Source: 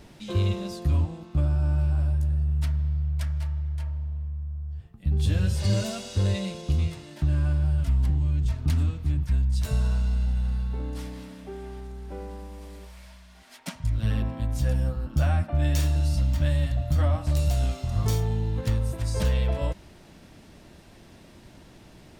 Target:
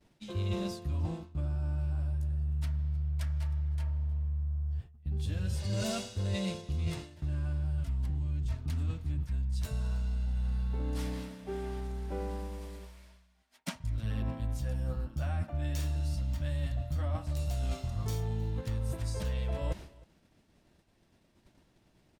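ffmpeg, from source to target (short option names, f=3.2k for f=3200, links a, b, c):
-af "agate=range=-33dB:threshold=-37dB:ratio=3:detection=peak,areverse,acompressor=threshold=-31dB:ratio=10,areverse,aecho=1:1:312:0.0708,volume=1.5dB"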